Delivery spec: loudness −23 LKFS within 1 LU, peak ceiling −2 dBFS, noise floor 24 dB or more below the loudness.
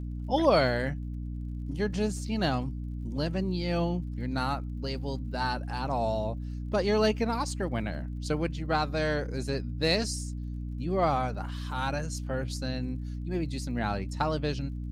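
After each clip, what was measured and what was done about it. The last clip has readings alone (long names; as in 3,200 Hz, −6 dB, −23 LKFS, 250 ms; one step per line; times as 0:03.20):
crackle rate 38 per second; mains hum 60 Hz; hum harmonics up to 300 Hz; level of the hum −33 dBFS; integrated loudness −30.5 LKFS; sample peak −10.5 dBFS; target loudness −23.0 LKFS
→ click removal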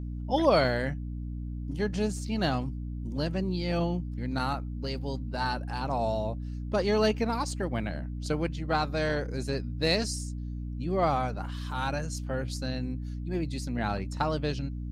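crackle rate 0.20 per second; mains hum 60 Hz; hum harmonics up to 300 Hz; level of the hum −33 dBFS
→ hum removal 60 Hz, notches 5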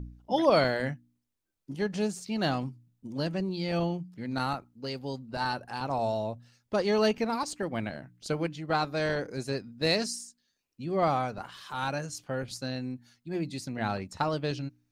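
mains hum none found; integrated loudness −31.0 LKFS; sample peak −10.5 dBFS; target loudness −23.0 LKFS
→ level +8 dB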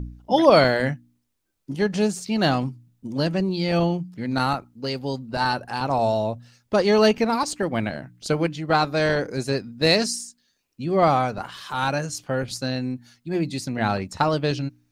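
integrated loudness −23.0 LKFS; sample peak −2.5 dBFS; background noise floor −71 dBFS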